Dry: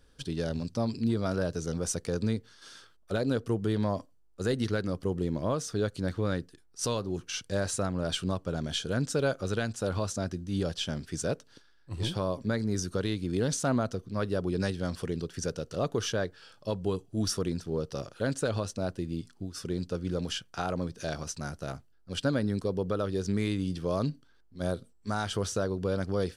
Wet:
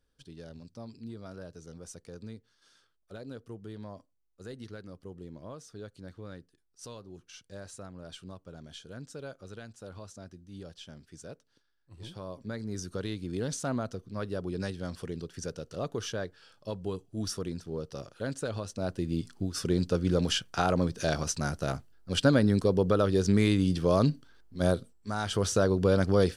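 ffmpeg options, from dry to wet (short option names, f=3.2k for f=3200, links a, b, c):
-af "volume=14.5dB,afade=t=in:st=11.97:d=1.06:silence=0.316228,afade=t=in:st=18.66:d=0.69:silence=0.316228,afade=t=out:st=24.7:d=0.39:silence=0.375837,afade=t=in:st=25.09:d=0.61:silence=0.354813"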